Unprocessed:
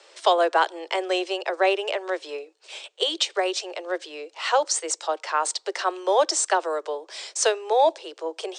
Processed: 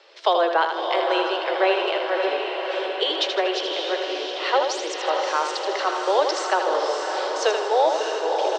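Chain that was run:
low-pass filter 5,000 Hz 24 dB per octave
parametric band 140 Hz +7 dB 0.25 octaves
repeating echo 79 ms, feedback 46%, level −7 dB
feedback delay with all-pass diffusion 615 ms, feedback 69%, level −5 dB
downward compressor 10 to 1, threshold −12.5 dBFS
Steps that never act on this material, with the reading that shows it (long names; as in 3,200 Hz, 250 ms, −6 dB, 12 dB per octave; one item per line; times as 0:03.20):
parametric band 140 Hz: nothing at its input below 290 Hz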